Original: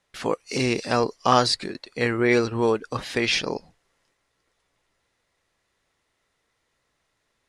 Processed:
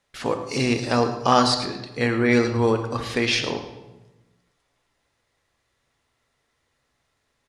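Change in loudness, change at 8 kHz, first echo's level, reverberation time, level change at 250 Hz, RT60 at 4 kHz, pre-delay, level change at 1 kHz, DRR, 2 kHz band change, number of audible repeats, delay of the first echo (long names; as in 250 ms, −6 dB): +1.0 dB, +0.5 dB, −13.5 dB, 1.1 s, +3.0 dB, 0.80 s, 3 ms, +1.5 dB, 6.0 dB, +0.5 dB, 1, 108 ms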